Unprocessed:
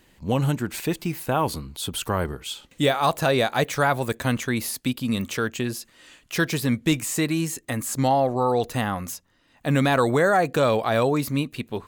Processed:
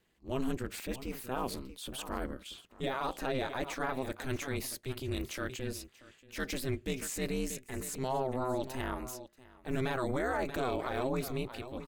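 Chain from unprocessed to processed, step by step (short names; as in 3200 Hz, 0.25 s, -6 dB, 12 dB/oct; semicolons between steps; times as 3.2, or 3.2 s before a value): HPF 54 Hz 6 dB/oct; bell 770 Hz -2.5 dB 0.94 oct; echo 0.633 s -16.5 dB; ring modulator 130 Hz; gate -41 dBFS, range -6 dB; high shelf 4300 Hz -3.5 dB, from 2.28 s -8.5 dB, from 4.16 s -3 dB; transient shaper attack -7 dB, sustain +2 dB; limiter -17.5 dBFS, peak gain reduction 5.5 dB; gain -5.5 dB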